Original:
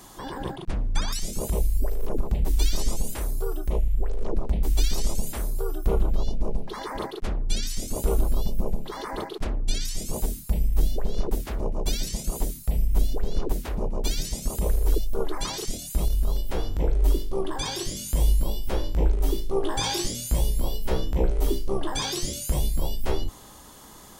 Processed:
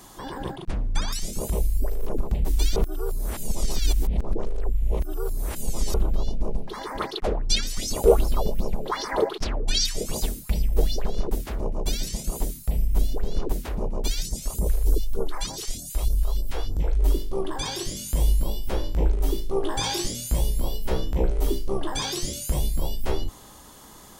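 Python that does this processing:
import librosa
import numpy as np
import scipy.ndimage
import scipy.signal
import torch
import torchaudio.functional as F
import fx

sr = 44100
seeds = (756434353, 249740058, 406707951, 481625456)

y = fx.bell_lfo(x, sr, hz=2.6, low_hz=430.0, high_hz=5600.0, db=18, at=(7.0, 11.09), fade=0.02)
y = fx.phaser_stages(y, sr, stages=2, low_hz=140.0, high_hz=2800.0, hz=3.3, feedback_pct=25, at=(14.07, 16.99), fade=0.02)
y = fx.edit(y, sr, fx.reverse_span(start_s=2.76, length_s=3.18), tone=tone)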